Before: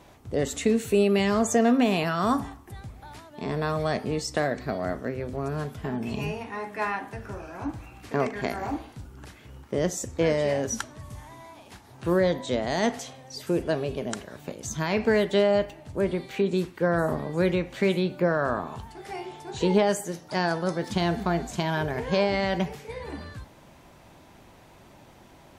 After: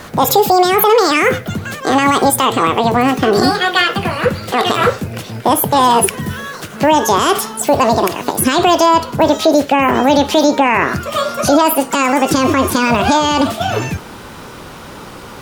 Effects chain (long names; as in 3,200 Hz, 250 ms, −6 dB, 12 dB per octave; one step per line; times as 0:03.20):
gliding playback speed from 185% → 147%
tape wow and flutter 19 cents
boost into a limiter +20.5 dB
level −1 dB